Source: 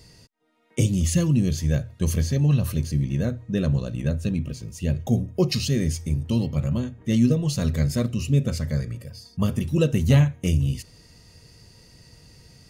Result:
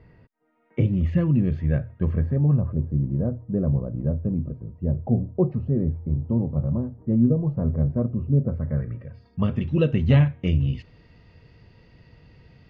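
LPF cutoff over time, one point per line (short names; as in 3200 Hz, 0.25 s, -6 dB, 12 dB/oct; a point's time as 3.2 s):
LPF 24 dB/oct
1.87 s 2100 Hz
2.77 s 1000 Hz
8.47 s 1000 Hz
8.84 s 1700 Hz
9.6 s 3100 Hz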